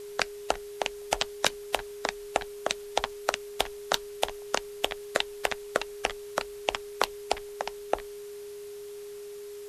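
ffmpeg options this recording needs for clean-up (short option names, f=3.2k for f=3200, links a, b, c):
-af "adeclick=t=4,bandreject=f=410:w=30,afwtdn=0.0025"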